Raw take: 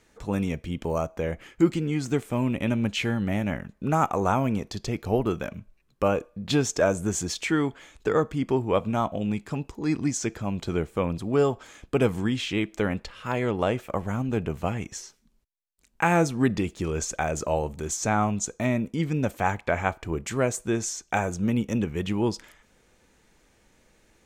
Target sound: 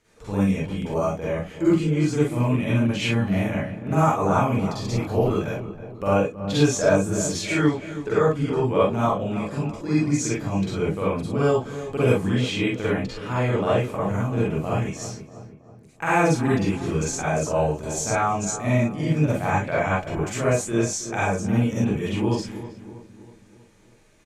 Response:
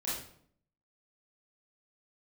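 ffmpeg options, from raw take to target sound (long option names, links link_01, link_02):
-filter_complex "[0:a]asplit=2[link_01][link_02];[link_02]adelay=322,lowpass=frequency=1700:poles=1,volume=-12.5dB,asplit=2[link_03][link_04];[link_04]adelay=322,lowpass=frequency=1700:poles=1,volume=0.52,asplit=2[link_05][link_06];[link_06]adelay=322,lowpass=frequency=1700:poles=1,volume=0.52,asplit=2[link_07][link_08];[link_08]adelay=322,lowpass=frequency=1700:poles=1,volume=0.52,asplit=2[link_09][link_10];[link_10]adelay=322,lowpass=frequency=1700:poles=1,volume=0.52[link_11];[link_01][link_03][link_05][link_07][link_09][link_11]amix=inputs=6:normalize=0[link_12];[1:a]atrim=start_sample=2205,atrim=end_sample=3087,asetrate=26460,aresample=44100[link_13];[link_12][link_13]afir=irnorm=-1:irlink=0,volume=-3.5dB"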